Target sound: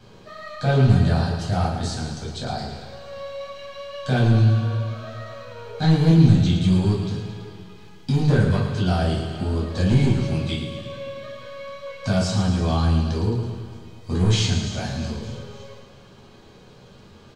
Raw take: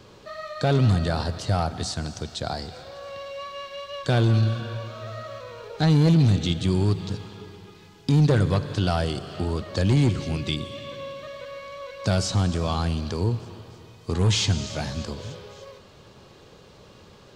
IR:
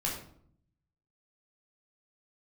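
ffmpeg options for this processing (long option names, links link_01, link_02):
-filter_complex "[0:a]aecho=1:1:110|220|330|440|550|660|770:0.398|0.223|0.125|0.0699|0.0392|0.0219|0.0123[link_01];[1:a]atrim=start_sample=2205,atrim=end_sample=4410,asetrate=61740,aresample=44100[link_02];[link_01][link_02]afir=irnorm=-1:irlink=0,volume=-2dB"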